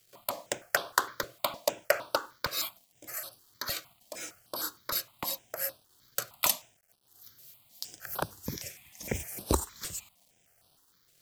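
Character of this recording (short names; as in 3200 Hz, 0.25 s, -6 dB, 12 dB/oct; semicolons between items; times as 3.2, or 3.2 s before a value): a quantiser's noise floor 10-bit, dither none; notches that jump at a steady rate 6.5 Hz 240–7000 Hz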